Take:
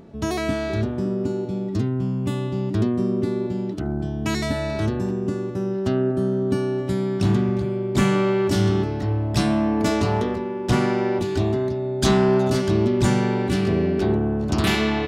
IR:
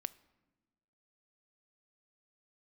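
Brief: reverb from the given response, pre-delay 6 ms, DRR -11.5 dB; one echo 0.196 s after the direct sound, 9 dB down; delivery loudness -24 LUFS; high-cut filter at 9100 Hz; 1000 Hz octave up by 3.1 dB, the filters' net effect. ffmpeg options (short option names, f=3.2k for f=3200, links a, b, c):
-filter_complex "[0:a]lowpass=9.1k,equalizer=f=1k:t=o:g=4,aecho=1:1:196:0.355,asplit=2[a][b];[1:a]atrim=start_sample=2205,adelay=6[c];[b][c]afir=irnorm=-1:irlink=0,volume=13.5dB[d];[a][d]amix=inputs=2:normalize=0,volume=-13.5dB"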